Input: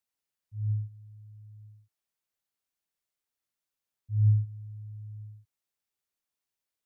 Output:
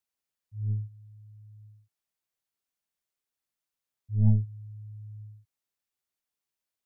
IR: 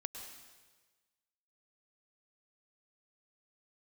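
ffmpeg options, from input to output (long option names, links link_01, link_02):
-af "aeval=exprs='0.168*(cos(1*acos(clip(val(0)/0.168,-1,1)))-cos(1*PI/2))+0.075*(cos(2*acos(clip(val(0)/0.168,-1,1)))-cos(2*PI/2))+0.00266*(cos(7*acos(clip(val(0)/0.168,-1,1)))-cos(7*PI/2))+0.00422*(cos(8*acos(clip(val(0)/0.168,-1,1)))-cos(8*PI/2))':channel_layout=same"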